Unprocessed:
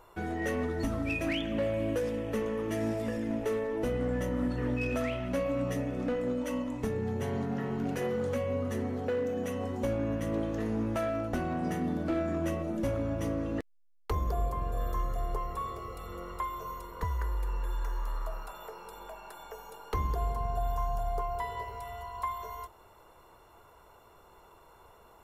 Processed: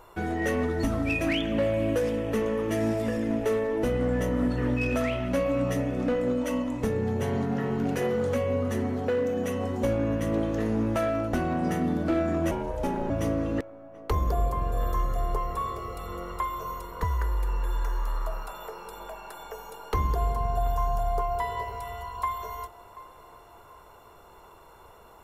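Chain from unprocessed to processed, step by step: narrowing echo 0.734 s, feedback 44%, band-pass 750 Hz, level -16 dB; 12.51–13.1 ring modulator 290 Hz; gain +5 dB

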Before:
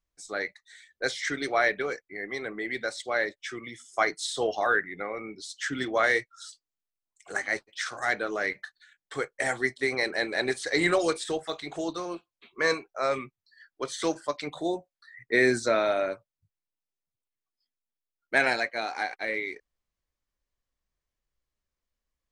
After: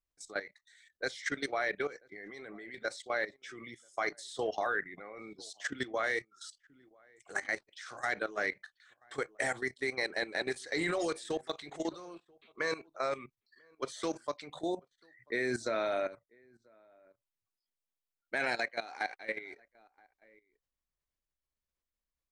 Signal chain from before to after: outdoor echo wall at 170 m, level -25 dB; level quantiser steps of 15 dB; gain -2 dB

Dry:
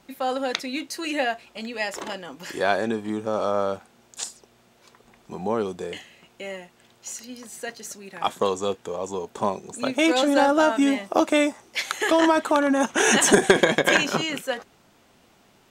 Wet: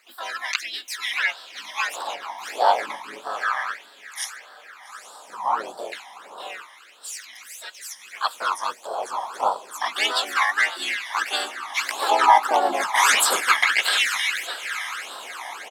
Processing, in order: on a send: diffused feedback echo 0.868 s, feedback 47%, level -12 dB; on the sum: harmoniser -4 st -4 dB, +4 st -3 dB, +5 st -4 dB; phaser stages 12, 1.6 Hz, lowest notch 440–2200 Hz; LFO high-pass sine 0.3 Hz 830–1800 Hz

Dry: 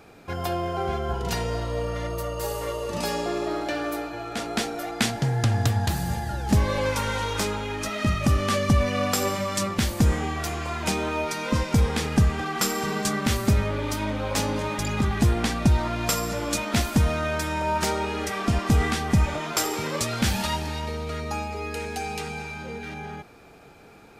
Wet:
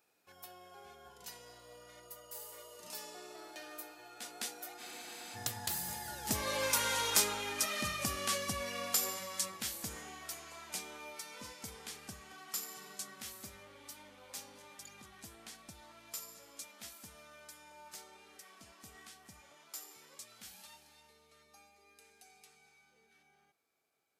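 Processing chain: Doppler pass-by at 7.13, 12 m/s, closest 9.5 m; RIAA curve recording; spectral freeze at 4.81, 0.55 s; gain -7 dB

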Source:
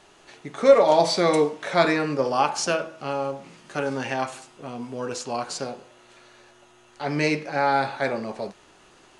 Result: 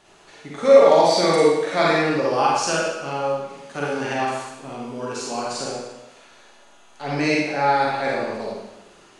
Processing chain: Schroeder reverb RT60 0.94 s, DRR -4.5 dB; gain -2.5 dB

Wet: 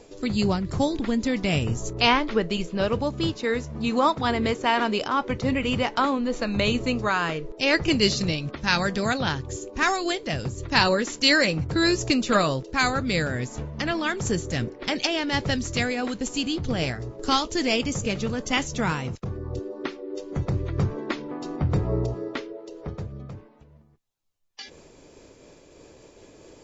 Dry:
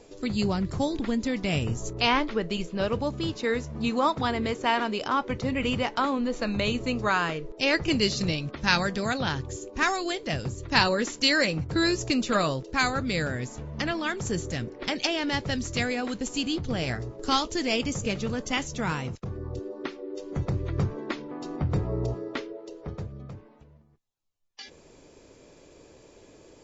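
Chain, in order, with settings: noise-modulated level, depth 60%; gain +6 dB

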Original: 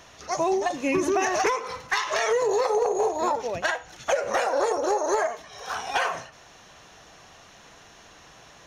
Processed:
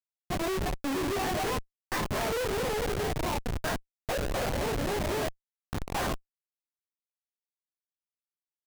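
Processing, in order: chorus voices 6, 0.35 Hz, delay 21 ms, depth 3.6 ms; Schmitt trigger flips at -26.5 dBFS

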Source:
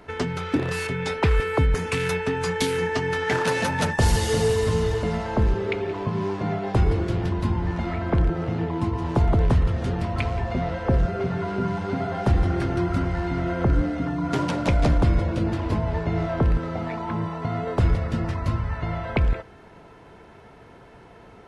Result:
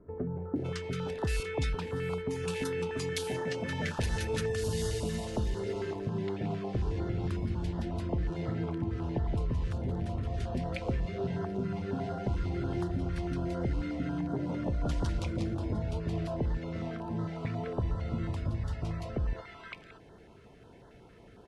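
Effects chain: compressor, threshold -22 dBFS, peak gain reduction 7.5 dB; bands offset in time lows, highs 0.56 s, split 980 Hz; stepped notch 11 Hz 790–2400 Hz; gain -5.5 dB

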